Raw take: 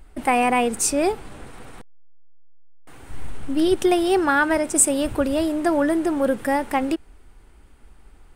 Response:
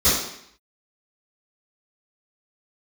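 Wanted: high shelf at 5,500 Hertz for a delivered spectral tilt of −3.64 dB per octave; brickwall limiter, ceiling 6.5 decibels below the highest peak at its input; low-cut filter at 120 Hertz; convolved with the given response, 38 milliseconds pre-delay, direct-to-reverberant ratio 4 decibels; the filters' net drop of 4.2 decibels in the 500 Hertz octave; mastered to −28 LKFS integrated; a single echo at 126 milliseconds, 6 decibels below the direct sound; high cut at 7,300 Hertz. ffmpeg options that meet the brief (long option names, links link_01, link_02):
-filter_complex "[0:a]highpass=120,lowpass=7300,equalizer=frequency=500:width_type=o:gain=-6,highshelf=frequency=5500:gain=-3,alimiter=limit=-15.5dB:level=0:latency=1,aecho=1:1:126:0.501,asplit=2[link_01][link_02];[1:a]atrim=start_sample=2205,adelay=38[link_03];[link_02][link_03]afir=irnorm=-1:irlink=0,volume=-22.5dB[link_04];[link_01][link_04]amix=inputs=2:normalize=0,volume=-5.5dB"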